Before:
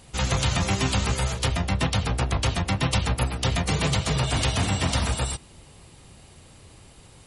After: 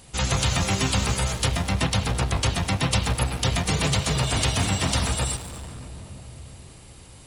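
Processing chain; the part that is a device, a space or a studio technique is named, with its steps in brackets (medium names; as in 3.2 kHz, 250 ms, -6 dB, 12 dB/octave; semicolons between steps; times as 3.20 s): saturated reverb return (on a send at -4 dB: reverberation RT60 2.9 s, pre-delay 100 ms + saturation -30.5 dBFS, distortion -7 dB); on the sum: treble shelf 5.2 kHz +5 dB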